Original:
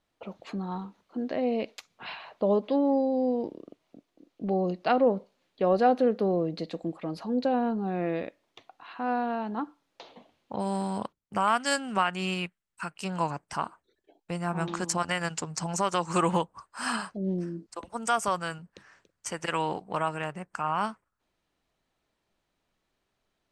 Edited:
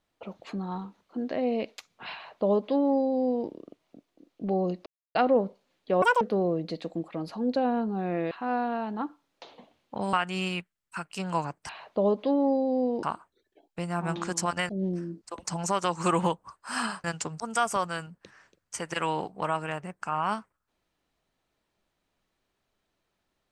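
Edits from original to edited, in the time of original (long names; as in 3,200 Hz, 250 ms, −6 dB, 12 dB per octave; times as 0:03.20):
0:02.14–0:03.48: duplicate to 0:13.55
0:04.86: splice in silence 0.29 s
0:05.73–0:06.10: play speed 194%
0:08.20–0:08.89: remove
0:10.71–0:11.99: remove
0:15.21–0:15.57: swap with 0:17.14–0:17.92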